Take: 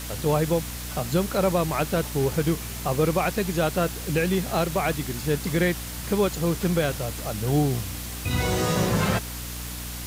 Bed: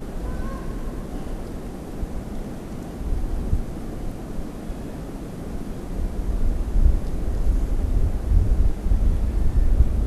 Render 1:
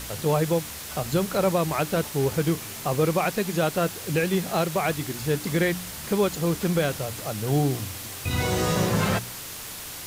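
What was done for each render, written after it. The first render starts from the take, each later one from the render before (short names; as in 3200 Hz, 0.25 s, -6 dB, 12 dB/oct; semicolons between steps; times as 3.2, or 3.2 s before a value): de-hum 60 Hz, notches 5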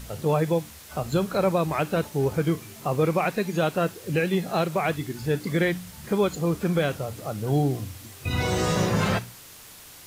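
noise print and reduce 9 dB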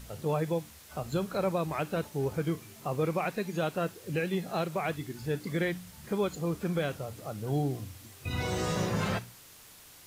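gain -7 dB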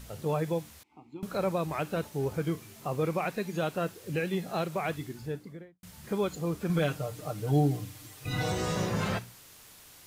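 0.83–1.23 vowel filter u; 4.98–5.83 studio fade out; 6.69–8.52 comb 6.6 ms, depth 88%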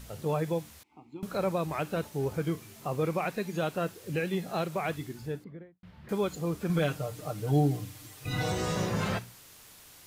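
5.44–6.09 air absorption 370 m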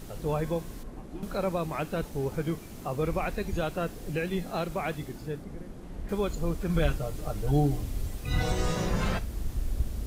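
add bed -12 dB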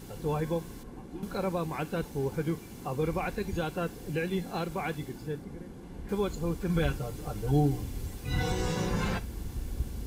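notch comb 630 Hz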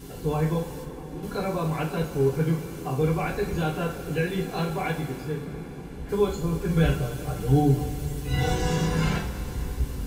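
two-slope reverb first 0.27 s, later 4.6 s, from -20 dB, DRR -3 dB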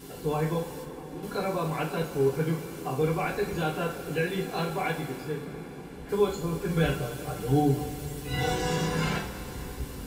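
low shelf 130 Hz -12 dB; notch 6300 Hz, Q 17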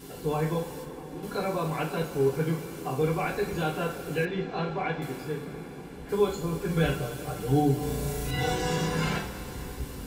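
4.25–5.02 air absorption 180 m; 7.79–8.31 flutter echo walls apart 6.1 m, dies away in 1.4 s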